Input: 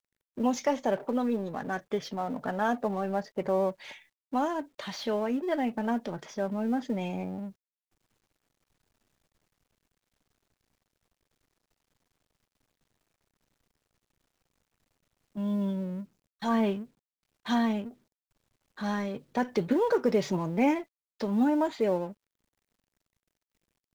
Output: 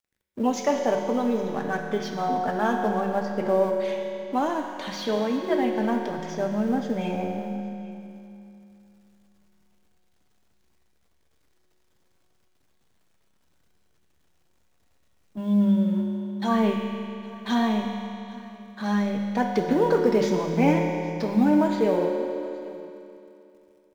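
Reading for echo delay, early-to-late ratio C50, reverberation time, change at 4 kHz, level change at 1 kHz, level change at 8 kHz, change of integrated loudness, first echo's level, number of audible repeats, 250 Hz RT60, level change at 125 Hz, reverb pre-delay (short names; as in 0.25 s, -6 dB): 0.815 s, 2.5 dB, 2.9 s, +5.0 dB, +5.5 dB, n/a, +5.0 dB, -21.0 dB, 1, 3.1 s, +7.5 dB, 5 ms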